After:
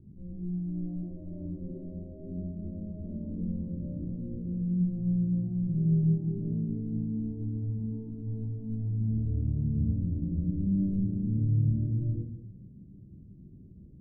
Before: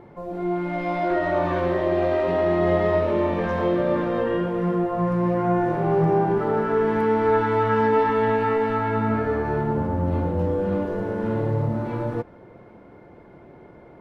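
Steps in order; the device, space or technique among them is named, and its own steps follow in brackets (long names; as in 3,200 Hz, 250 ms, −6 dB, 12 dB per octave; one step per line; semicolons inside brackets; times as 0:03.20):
club heard from the street (brickwall limiter −17 dBFS, peak gain reduction 7.5 dB; low-pass filter 200 Hz 24 dB per octave; convolution reverb RT60 0.70 s, pre-delay 3 ms, DRR −3.5 dB)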